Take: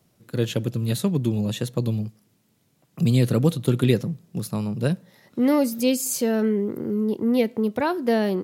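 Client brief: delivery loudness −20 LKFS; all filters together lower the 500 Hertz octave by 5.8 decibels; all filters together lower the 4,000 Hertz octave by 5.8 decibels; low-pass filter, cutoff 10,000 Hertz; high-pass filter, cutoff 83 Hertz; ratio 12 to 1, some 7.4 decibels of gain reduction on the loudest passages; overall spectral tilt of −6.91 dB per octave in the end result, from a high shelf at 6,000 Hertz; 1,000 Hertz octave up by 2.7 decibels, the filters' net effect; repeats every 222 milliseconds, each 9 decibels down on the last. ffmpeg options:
ffmpeg -i in.wav -af "highpass=83,lowpass=10000,equalizer=frequency=500:width_type=o:gain=-8.5,equalizer=frequency=1000:width_type=o:gain=6.5,equalizer=frequency=4000:width_type=o:gain=-4.5,highshelf=frequency=6000:gain=-9,acompressor=threshold=-23dB:ratio=12,aecho=1:1:222|444|666|888:0.355|0.124|0.0435|0.0152,volume=9dB" out.wav

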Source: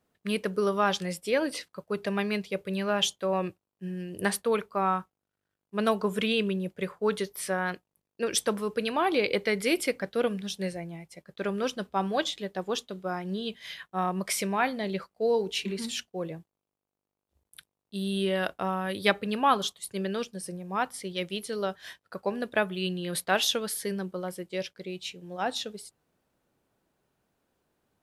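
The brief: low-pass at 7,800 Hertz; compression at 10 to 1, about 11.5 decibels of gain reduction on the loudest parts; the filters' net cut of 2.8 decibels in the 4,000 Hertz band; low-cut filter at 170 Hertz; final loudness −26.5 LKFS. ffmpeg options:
ffmpeg -i in.wav -af "highpass=170,lowpass=7800,equalizer=frequency=4000:width_type=o:gain=-3.5,acompressor=threshold=-29dB:ratio=10,volume=9.5dB" out.wav

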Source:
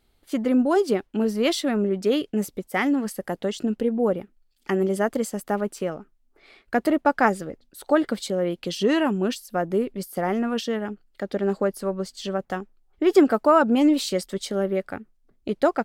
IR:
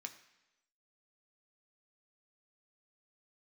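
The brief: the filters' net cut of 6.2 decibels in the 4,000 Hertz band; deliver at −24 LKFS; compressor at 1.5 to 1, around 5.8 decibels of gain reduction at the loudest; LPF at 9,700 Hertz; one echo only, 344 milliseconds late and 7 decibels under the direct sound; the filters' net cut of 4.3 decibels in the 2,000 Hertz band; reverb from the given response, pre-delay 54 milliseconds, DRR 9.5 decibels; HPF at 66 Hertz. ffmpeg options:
-filter_complex "[0:a]highpass=66,lowpass=9700,equalizer=frequency=2000:width_type=o:gain=-4.5,equalizer=frequency=4000:width_type=o:gain=-6.5,acompressor=threshold=-27dB:ratio=1.5,aecho=1:1:344:0.447,asplit=2[link_01][link_02];[1:a]atrim=start_sample=2205,adelay=54[link_03];[link_02][link_03]afir=irnorm=-1:irlink=0,volume=-6dB[link_04];[link_01][link_04]amix=inputs=2:normalize=0,volume=3dB"

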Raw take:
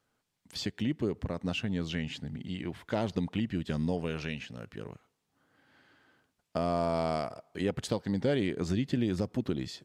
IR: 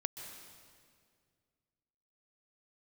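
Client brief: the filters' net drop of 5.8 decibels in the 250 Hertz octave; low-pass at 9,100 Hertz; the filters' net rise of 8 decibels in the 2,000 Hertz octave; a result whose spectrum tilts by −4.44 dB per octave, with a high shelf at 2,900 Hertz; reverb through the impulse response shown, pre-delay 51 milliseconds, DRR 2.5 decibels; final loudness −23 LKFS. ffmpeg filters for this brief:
-filter_complex "[0:a]lowpass=9100,equalizer=frequency=250:width_type=o:gain=-8,equalizer=frequency=2000:width_type=o:gain=7,highshelf=frequency=2900:gain=7.5,asplit=2[link_01][link_02];[1:a]atrim=start_sample=2205,adelay=51[link_03];[link_02][link_03]afir=irnorm=-1:irlink=0,volume=-2.5dB[link_04];[link_01][link_04]amix=inputs=2:normalize=0,volume=8.5dB"

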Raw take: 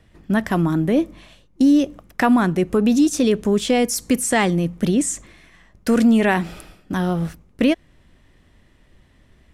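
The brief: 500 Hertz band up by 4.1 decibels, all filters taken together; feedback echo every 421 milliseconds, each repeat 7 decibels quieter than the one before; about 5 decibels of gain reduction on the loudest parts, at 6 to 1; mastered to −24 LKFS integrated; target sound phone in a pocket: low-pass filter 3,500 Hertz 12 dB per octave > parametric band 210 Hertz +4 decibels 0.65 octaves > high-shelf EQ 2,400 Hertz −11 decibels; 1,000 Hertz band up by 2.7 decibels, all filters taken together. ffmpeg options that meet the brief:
ffmpeg -i in.wav -af "equalizer=frequency=500:width_type=o:gain=4.5,equalizer=frequency=1000:width_type=o:gain=3.5,acompressor=threshold=-15dB:ratio=6,lowpass=3500,equalizer=frequency=210:width_type=o:width=0.65:gain=4,highshelf=frequency=2400:gain=-11,aecho=1:1:421|842|1263|1684|2105:0.447|0.201|0.0905|0.0407|0.0183,volume=-4.5dB" out.wav

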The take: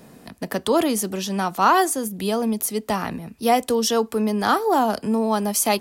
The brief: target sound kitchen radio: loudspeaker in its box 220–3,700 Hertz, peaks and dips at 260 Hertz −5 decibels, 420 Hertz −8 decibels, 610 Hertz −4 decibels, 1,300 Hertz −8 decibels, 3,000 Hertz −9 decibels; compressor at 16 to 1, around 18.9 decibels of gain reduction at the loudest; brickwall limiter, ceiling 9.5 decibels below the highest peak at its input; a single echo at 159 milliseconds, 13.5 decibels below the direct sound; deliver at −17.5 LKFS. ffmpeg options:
ffmpeg -i in.wav -af "acompressor=threshold=-31dB:ratio=16,alimiter=level_in=4.5dB:limit=-24dB:level=0:latency=1,volume=-4.5dB,highpass=220,equalizer=frequency=260:width_type=q:width=4:gain=-5,equalizer=frequency=420:width_type=q:width=4:gain=-8,equalizer=frequency=610:width_type=q:width=4:gain=-4,equalizer=frequency=1300:width_type=q:width=4:gain=-8,equalizer=frequency=3000:width_type=q:width=4:gain=-9,lowpass=frequency=3700:width=0.5412,lowpass=frequency=3700:width=1.3066,aecho=1:1:159:0.211,volume=25.5dB" out.wav

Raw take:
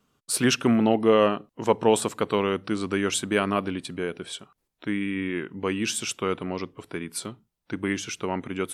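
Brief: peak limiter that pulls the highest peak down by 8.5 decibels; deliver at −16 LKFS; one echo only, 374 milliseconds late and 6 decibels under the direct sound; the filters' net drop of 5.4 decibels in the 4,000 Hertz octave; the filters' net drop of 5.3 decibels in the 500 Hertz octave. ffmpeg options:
ffmpeg -i in.wav -af "equalizer=frequency=500:width_type=o:gain=-6.5,equalizer=frequency=4000:width_type=o:gain=-8,alimiter=limit=-18dB:level=0:latency=1,aecho=1:1:374:0.501,volume=14.5dB" out.wav

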